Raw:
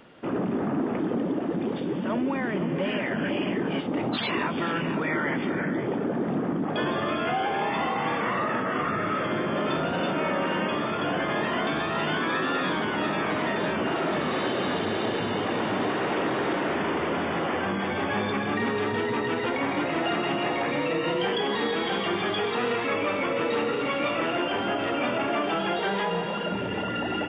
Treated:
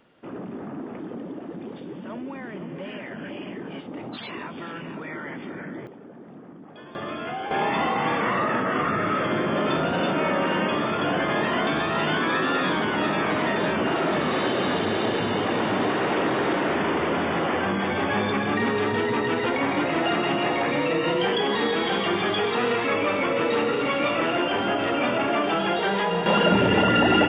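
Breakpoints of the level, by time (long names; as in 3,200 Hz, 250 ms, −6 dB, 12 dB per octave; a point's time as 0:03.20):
−8 dB
from 0:05.87 −17 dB
from 0:06.95 −5 dB
from 0:07.51 +3 dB
from 0:26.26 +10.5 dB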